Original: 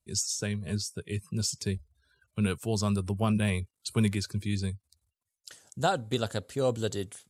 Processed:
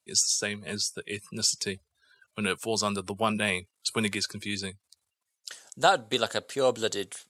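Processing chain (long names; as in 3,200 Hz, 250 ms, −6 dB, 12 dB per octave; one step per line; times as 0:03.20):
meter weighting curve A
level +6.5 dB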